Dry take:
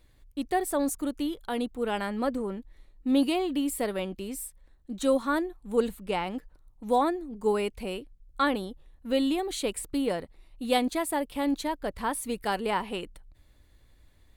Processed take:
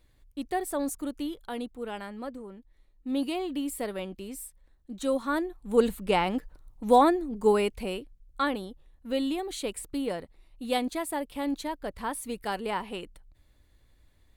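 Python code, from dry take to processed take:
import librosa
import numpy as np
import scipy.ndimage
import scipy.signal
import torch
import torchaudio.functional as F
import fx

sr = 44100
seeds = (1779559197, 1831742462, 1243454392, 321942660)

y = fx.gain(x, sr, db=fx.line((1.32, -3.0), (2.51, -11.0), (3.45, -3.5), (5.11, -3.5), (5.99, 5.0), (7.27, 5.0), (8.56, -3.0)))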